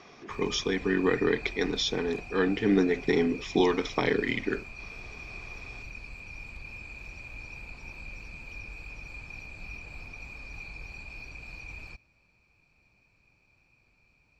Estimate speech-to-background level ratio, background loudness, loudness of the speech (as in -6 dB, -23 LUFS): 15.0 dB, -42.5 LUFS, -27.5 LUFS